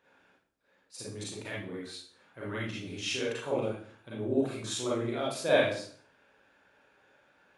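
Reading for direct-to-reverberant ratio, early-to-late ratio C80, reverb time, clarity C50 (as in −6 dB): −7.5 dB, 6.0 dB, 0.50 s, −0.5 dB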